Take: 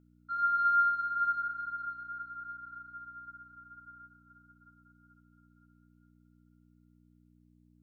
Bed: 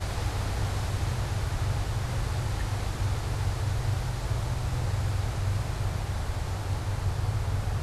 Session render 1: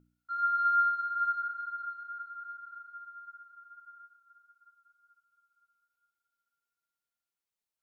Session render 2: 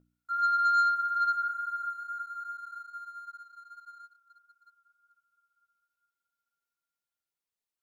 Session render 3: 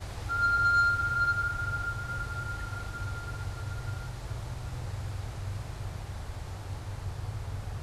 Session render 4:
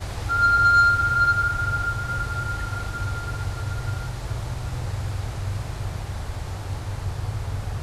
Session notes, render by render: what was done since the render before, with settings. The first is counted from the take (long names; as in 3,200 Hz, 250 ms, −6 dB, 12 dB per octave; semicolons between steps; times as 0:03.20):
hum removal 60 Hz, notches 5
leveller curve on the samples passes 1
mix in bed −8 dB
level +8 dB